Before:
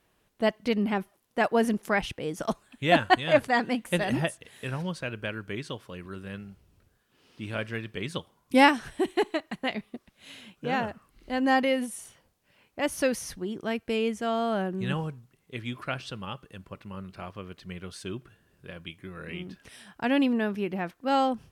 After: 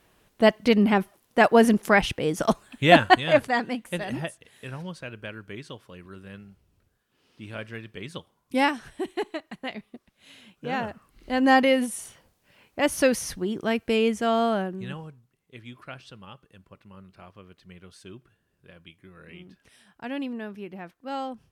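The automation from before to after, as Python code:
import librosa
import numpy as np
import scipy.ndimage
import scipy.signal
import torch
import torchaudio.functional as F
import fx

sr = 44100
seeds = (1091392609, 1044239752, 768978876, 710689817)

y = fx.gain(x, sr, db=fx.line((2.84, 7.0), (3.95, -4.0), (10.34, -4.0), (11.49, 5.0), (14.45, 5.0), (14.98, -8.0)))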